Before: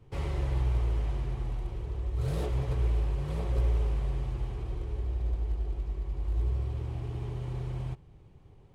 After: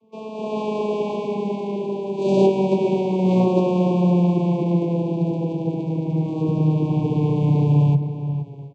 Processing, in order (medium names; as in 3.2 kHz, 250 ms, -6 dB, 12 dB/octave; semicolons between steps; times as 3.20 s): vocoder on a note that slides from A3, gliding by -8 st; high-pass 140 Hz 6 dB/octave; FFT band-reject 1.1–2.2 kHz; level rider gain up to 17 dB; echo from a far wall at 80 m, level -10 dB; trim +3.5 dB